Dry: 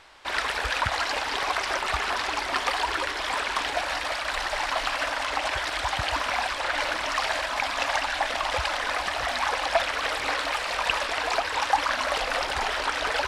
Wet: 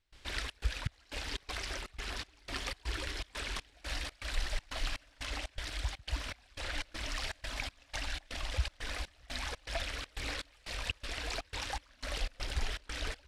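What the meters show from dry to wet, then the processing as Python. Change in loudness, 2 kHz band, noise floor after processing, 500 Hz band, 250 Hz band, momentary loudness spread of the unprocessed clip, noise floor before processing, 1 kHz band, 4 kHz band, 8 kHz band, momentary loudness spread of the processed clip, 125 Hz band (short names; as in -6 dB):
-13.5 dB, -15.0 dB, -65 dBFS, -16.5 dB, -8.0 dB, 2 LU, -31 dBFS, -21.0 dB, -11.0 dB, -9.5 dB, 3 LU, +1.0 dB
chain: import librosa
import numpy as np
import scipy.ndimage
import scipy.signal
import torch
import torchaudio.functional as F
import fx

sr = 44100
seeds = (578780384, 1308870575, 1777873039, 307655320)

y = fx.tone_stack(x, sr, knobs='10-0-1')
y = fx.rider(y, sr, range_db=10, speed_s=0.5)
y = fx.step_gate(y, sr, bpm=121, pattern='.xxx.xx..xx', floor_db=-24.0, edge_ms=4.5)
y = F.gain(torch.from_numpy(y), 13.0).numpy()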